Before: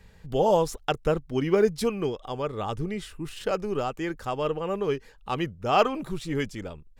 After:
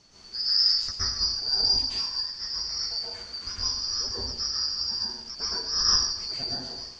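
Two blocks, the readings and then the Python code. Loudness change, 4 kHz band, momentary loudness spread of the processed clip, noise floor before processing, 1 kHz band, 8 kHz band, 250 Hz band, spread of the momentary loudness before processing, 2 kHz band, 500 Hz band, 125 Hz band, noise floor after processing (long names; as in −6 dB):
+2.5 dB, +17.0 dB, 10 LU, −54 dBFS, −14.0 dB, +12.0 dB, −18.0 dB, 11 LU, −7.5 dB, −22.5 dB, −11.5 dB, −46 dBFS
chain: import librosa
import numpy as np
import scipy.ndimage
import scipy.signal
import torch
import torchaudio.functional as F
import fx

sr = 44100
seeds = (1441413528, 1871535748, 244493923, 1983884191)

y = fx.band_shuffle(x, sr, order='2341')
y = fx.tilt_eq(y, sr, slope=-2.5)
y = fx.dmg_noise_colour(y, sr, seeds[0], colour='pink', level_db=-53.0)
y = fx.ladder_lowpass(y, sr, hz=6400.0, resonance_pct=65)
y = fx.rev_plate(y, sr, seeds[1], rt60_s=0.79, hf_ratio=0.9, predelay_ms=105, drr_db=-8.5)
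y = fx.end_taper(y, sr, db_per_s=100.0)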